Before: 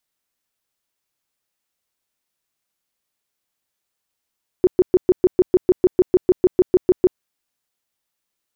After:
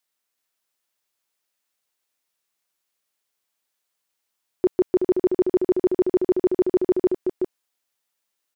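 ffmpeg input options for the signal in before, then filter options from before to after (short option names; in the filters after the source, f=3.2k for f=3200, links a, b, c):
-f lavfi -i "aevalsrc='0.398*sin(2*PI*366*mod(t,0.15))*lt(mod(t,0.15),11/366)':d=2.55:s=44100"
-filter_complex "[0:a]lowshelf=f=230:g=-11.5,asplit=2[a][b];[b]aecho=0:1:375:0.531[c];[a][c]amix=inputs=2:normalize=0"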